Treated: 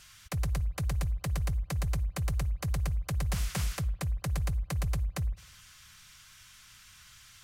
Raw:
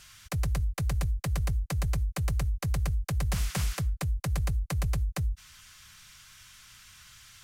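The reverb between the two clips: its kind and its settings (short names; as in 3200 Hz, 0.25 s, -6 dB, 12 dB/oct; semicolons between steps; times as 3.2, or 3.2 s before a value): spring tank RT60 1.1 s, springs 51 ms, chirp 50 ms, DRR 19 dB; gain -2 dB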